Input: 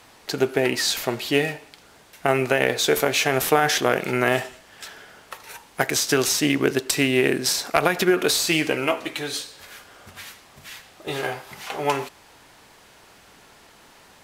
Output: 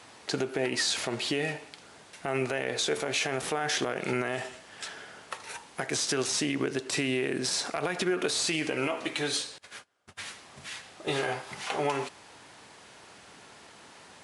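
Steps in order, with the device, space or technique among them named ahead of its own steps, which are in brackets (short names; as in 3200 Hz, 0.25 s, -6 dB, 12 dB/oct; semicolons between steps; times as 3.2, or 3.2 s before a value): 9.58–10.2 gate -42 dBFS, range -28 dB; podcast mastering chain (HPF 87 Hz; de-esser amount 40%; compressor 3:1, threshold -23 dBFS, peak gain reduction 8.5 dB; limiter -17 dBFS, peak gain reduction 10.5 dB; MP3 96 kbps 24000 Hz)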